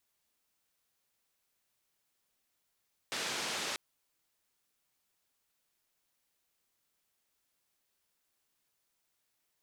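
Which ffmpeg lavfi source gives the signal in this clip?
ffmpeg -f lavfi -i "anoisesrc=color=white:duration=0.64:sample_rate=44100:seed=1,highpass=frequency=170,lowpass=frequency=5400,volume=-26.2dB" out.wav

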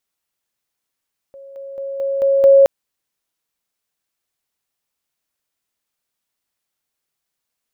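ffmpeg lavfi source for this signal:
ffmpeg -f lavfi -i "aevalsrc='pow(10,(-35.5+6*floor(t/0.22))/20)*sin(2*PI*549*t)':duration=1.32:sample_rate=44100" out.wav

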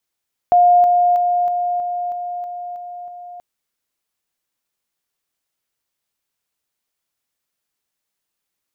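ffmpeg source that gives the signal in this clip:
ffmpeg -f lavfi -i "aevalsrc='pow(10,(-8-3*floor(t/0.32))/20)*sin(2*PI*709*t)':duration=2.88:sample_rate=44100" out.wav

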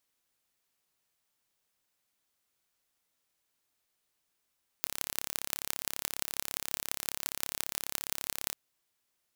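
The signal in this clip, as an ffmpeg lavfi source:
ffmpeg -f lavfi -i "aevalsrc='0.75*eq(mod(n,1271),0)*(0.5+0.5*eq(mod(n,7626),0))':duration=3.7:sample_rate=44100" out.wav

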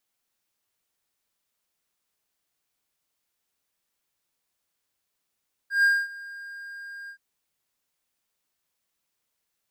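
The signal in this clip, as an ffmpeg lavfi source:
ffmpeg -f lavfi -i "aevalsrc='0.211*(1-4*abs(mod(1610*t+0.25,1)-0.5))':duration=1.474:sample_rate=44100,afade=type=in:duration=0.137,afade=type=out:start_time=0.137:duration=0.238:silence=0.0841,afade=type=out:start_time=1.39:duration=0.084" out.wav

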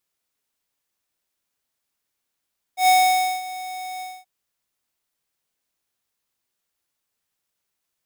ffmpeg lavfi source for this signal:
ffmpeg -f lavfi -i "aevalsrc='0.2*(2*lt(mod(742*t,1),0.5)-1)':duration=1.477:sample_rate=44100,afade=type=in:duration=0.109,afade=type=out:start_time=0.109:duration=0.536:silence=0.126,afade=type=out:start_time=1.24:duration=0.237" out.wav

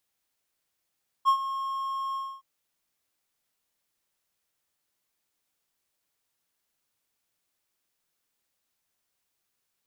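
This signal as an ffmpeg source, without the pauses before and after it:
ffmpeg -f lavfi -i "aevalsrc='0.2*(1-4*abs(mod(1080*t+0.25,1)-0.5))':duration=1.167:sample_rate=44100,afade=type=in:duration=0.035,afade=type=out:start_time=0.035:duration=0.084:silence=0.224,afade=type=out:start_time=0.9:duration=0.267" out.wav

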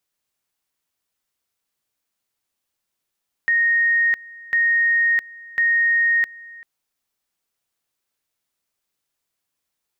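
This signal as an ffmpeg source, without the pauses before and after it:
ffmpeg -f lavfi -i "aevalsrc='pow(10,(-14.5-22.5*gte(mod(t,1.05),0.66))/20)*sin(2*PI*1860*t)':duration=3.15:sample_rate=44100" out.wav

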